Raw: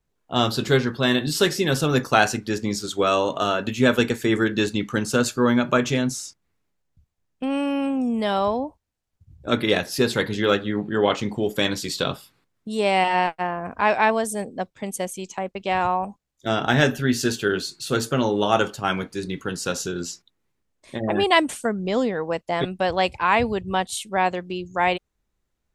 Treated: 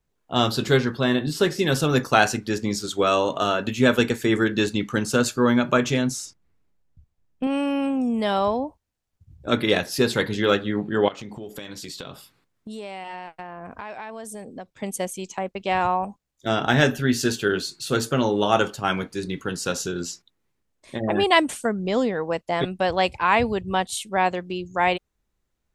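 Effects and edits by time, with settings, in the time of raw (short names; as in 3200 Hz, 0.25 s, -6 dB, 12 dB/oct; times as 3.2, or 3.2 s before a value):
1.03–1.59 high shelf 2200 Hz -8 dB
6.25–7.47 tilt -1.5 dB/oct
11.08–14.77 compressor, threshold -33 dBFS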